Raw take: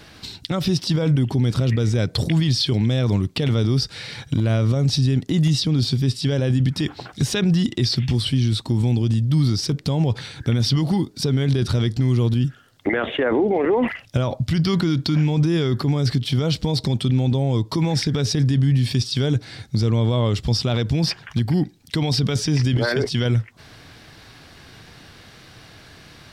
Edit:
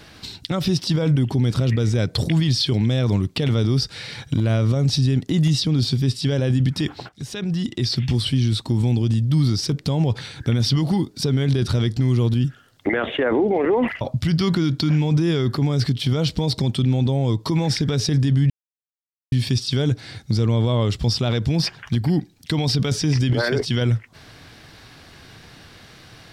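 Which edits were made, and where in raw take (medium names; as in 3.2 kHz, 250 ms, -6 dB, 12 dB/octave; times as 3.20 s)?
7.09–8.10 s: fade in, from -16 dB
14.01–14.27 s: delete
18.76 s: insert silence 0.82 s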